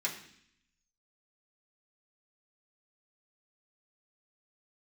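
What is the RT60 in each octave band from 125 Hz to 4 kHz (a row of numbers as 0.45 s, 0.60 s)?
0.95 s, 0.95 s, 0.65 s, 0.65 s, 0.80 s, 0.80 s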